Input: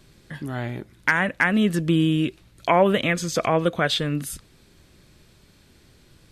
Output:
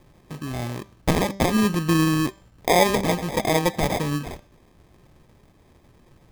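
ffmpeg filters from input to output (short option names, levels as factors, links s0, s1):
-af "acrusher=samples=31:mix=1:aa=0.000001,bandreject=f=196.5:t=h:w=4,bandreject=f=393:t=h:w=4,bandreject=f=589.5:t=h:w=4,bandreject=f=786:t=h:w=4,bandreject=f=982.5:t=h:w=4,bandreject=f=1179:t=h:w=4,bandreject=f=1375.5:t=h:w=4,bandreject=f=1572:t=h:w=4,bandreject=f=1768.5:t=h:w=4,bandreject=f=1965:t=h:w=4,bandreject=f=2161.5:t=h:w=4,bandreject=f=2358:t=h:w=4,bandreject=f=2554.5:t=h:w=4,bandreject=f=2751:t=h:w=4,bandreject=f=2947.5:t=h:w=4,bandreject=f=3144:t=h:w=4,bandreject=f=3340.5:t=h:w=4,bandreject=f=3537:t=h:w=4,bandreject=f=3733.5:t=h:w=4,bandreject=f=3930:t=h:w=4,bandreject=f=4126.5:t=h:w=4,bandreject=f=4323:t=h:w=4,bandreject=f=4519.5:t=h:w=4,bandreject=f=4716:t=h:w=4,bandreject=f=4912.5:t=h:w=4,bandreject=f=5109:t=h:w=4,bandreject=f=5305.5:t=h:w=4,bandreject=f=5502:t=h:w=4,bandreject=f=5698.5:t=h:w=4,bandreject=f=5895:t=h:w=4,bandreject=f=6091.5:t=h:w=4,bandreject=f=6288:t=h:w=4,bandreject=f=6484.5:t=h:w=4,bandreject=f=6681:t=h:w=4,bandreject=f=6877.5:t=h:w=4,bandreject=f=7074:t=h:w=4,bandreject=f=7270.5:t=h:w=4,bandreject=f=7467:t=h:w=4,bandreject=f=7663.5:t=h:w=4"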